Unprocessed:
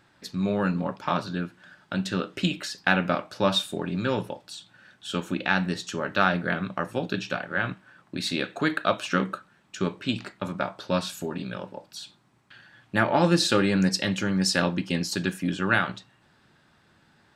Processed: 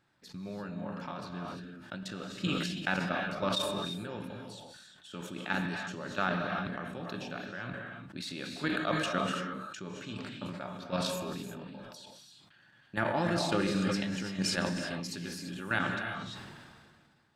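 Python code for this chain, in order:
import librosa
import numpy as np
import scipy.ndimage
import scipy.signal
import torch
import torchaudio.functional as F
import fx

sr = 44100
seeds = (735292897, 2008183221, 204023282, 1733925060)

y = fx.peak_eq(x, sr, hz=140.0, db=3.0, octaves=0.36)
y = fx.level_steps(y, sr, step_db=11)
y = fx.rev_gated(y, sr, seeds[0], gate_ms=370, shape='rising', drr_db=4.0)
y = fx.sustainer(y, sr, db_per_s=29.0)
y = y * librosa.db_to_amplitude(-7.5)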